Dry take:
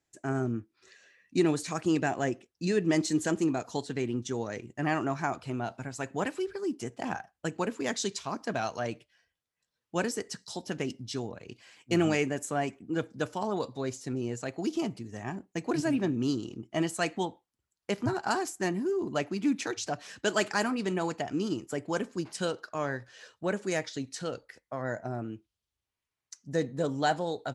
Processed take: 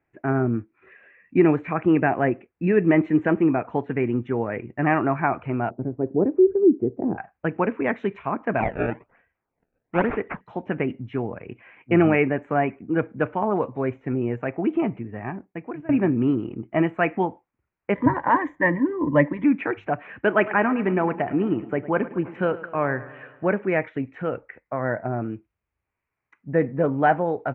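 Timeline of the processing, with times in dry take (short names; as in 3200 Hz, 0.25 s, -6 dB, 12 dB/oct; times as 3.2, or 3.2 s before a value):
5.7–7.18 synth low-pass 380 Hz, resonance Q 2.7
8.6–10.41 decimation with a swept rate 24×, swing 160% 1.1 Hz
15–15.89 fade out, to -22.5 dB
17.95–19.44 ripple EQ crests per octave 1.1, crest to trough 18 dB
20.28–23.48 feedback echo 0.106 s, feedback 60%, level -17 dB
whole clip: elliptic low-pass 2400 Hz, stop band 50 dB; gain +9 dB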